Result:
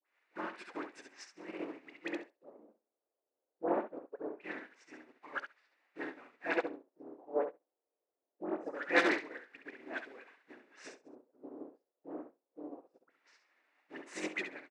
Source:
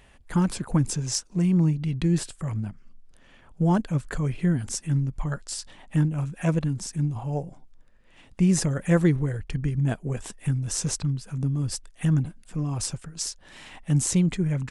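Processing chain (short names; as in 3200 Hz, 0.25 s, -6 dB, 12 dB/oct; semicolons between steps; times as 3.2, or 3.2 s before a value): octaver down 2 oct, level +2 dB; high shelf 2400 Hz +7 dB; low-pass opened by the level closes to 470 Hz, open at -17.5 dBFS; in parallel at -5 dB: requantised 6-bit, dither triangular; on the sum: LFO low-pass square 0.23 Hz 530–2000 Hz; soft clip -15 dBFS, distortion -10 dB; steep high-pass 280 Hz 36 dB/oct; low shelf 440 Hz -6 dB; notch 3200 Hz, Q 14; dispersion highs, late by 64 ms, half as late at 1200 Hz; on a send: feedback echo 67 ms, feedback 30%, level -3.5 dB; on the sum: upward expander 2.5:1, over -48 dBFS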